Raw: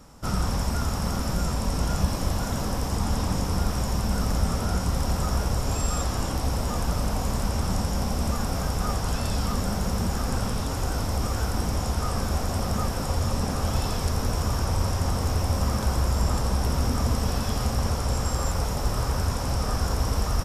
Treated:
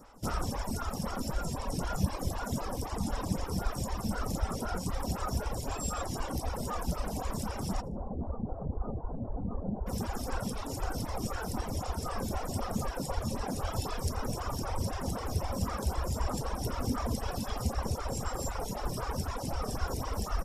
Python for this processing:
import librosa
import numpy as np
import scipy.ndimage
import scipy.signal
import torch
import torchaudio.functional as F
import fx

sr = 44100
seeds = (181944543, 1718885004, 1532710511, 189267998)

p1 = fx.dereverb_blind(x, sr, rt60_s=1.7)
p2 = fx.bessel_lowpass(p1, sr, hz=600.0, order=6, at=(7.8, 9.86), fade=0.02)
p3 = p2 + fx.echo_feedback(p2, sr, ms=75, feedback_pct=20, wet_db=-23.5, dry=0)
y = fx.stagger_phaser(p3, sr, hz=3.9)